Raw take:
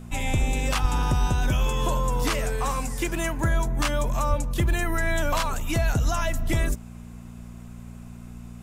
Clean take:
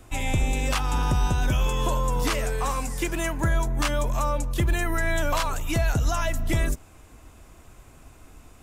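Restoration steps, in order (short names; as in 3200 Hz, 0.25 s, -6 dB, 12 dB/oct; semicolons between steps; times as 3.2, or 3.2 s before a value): de-hum 59 Hz, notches 4; de-plosive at 0.81/4.29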